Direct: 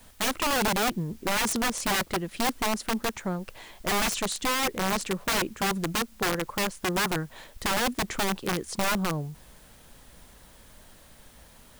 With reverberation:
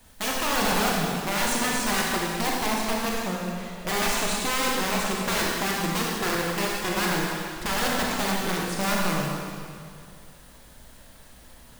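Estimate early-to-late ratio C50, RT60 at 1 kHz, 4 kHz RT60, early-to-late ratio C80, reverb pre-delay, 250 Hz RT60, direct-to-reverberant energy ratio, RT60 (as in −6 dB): −1.5 dB, 2.2 s, 2.1 s, 0.0 dB, 25 ms, 2.2 s, −3.0 dB, 2.2 s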